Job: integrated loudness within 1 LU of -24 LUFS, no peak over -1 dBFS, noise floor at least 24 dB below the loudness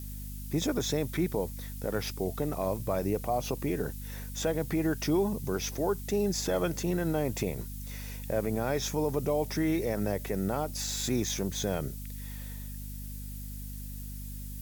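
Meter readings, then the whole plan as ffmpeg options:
hum 50 Hz; harmonics up to 250 Hz; hum level -38 dBFS; noise floor -40 dBFS; noise floor target -56 dBFS; loudness -32.0 LUFS; peak -16.5 dBFS; loudness target -24.0 LUFS
-> -af "bandreject=f=50:t=h:w=6,bandreject=f=100:t=h:w=6,bandreject=f=150:t=h:w=6,bandreject=f=200:t=h:w=6,bandreject=f=250:t=h:w=6"
-af "afftdn=nr=16:nf=-40"
-af "volume=8dB"

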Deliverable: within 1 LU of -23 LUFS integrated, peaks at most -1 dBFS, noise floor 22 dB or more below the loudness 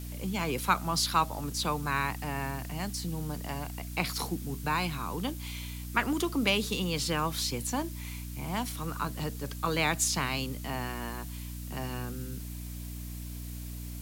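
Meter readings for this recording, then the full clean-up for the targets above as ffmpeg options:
hum 60 Hz; harmonics up to 300 Hz; hum level -37 dBFS; noise floor -40 dBFS; noise floor target -55 dBFS; loudness -32.5 LUFS; peak -9.0 dBFS; loudness target -23.0 LUFS
-> -af "bandreject=f=60:t=h:w=4,bandreject=f=120:t=h:w=4,bandreject=f=180:t=h:w=4,bandreject=f=240:t=h:w=4,bandreject=f=300:t=h:w=4"
-af "afftdn=nr=15:nf=-40"
-af "volume=9.5dB,alimiter=limit=-1dB:level=0:latency=1"

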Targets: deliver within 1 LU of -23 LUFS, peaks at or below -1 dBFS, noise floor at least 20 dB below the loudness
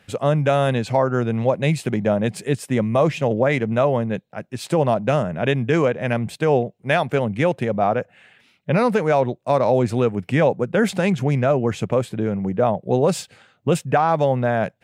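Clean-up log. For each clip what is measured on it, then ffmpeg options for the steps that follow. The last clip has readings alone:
loudness -20.5 LUFS; peak -5.5 dBFS; loudness target -23.0 LUFS
-> -af "volume=-2.5dB"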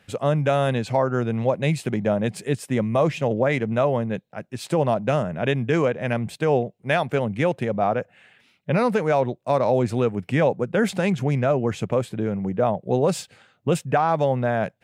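loudness -23.0 LUFS; peak -8.0 dBFS; noise floor -63 dBFS

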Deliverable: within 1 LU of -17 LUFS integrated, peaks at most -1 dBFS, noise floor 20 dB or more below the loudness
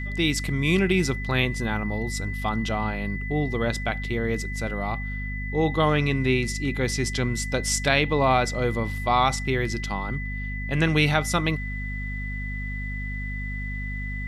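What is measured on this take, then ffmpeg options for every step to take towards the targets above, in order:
hum 50 Hz; harmonics up to 250 Hz; hum level -29 dBFS; steady tone 2000 Hz; tone level -34 dBFS; loudness -25.5 LUFS; peak -6.0 dBFS; loudness target -17.0 LUFS
-> -af "bandreject=f=50:t=h:w=4,bandreject=f=100:t=h:w=4,bandreject=f=150:t=h:w=4,bandreject=f=200:t=h:w=4,bandreject=f=250:t=h:w=4"
-af "bandreject=f=2k:w=30"
-af "volume=8.5dB,alimiter=limit=-1dB:level=0:latency=1"

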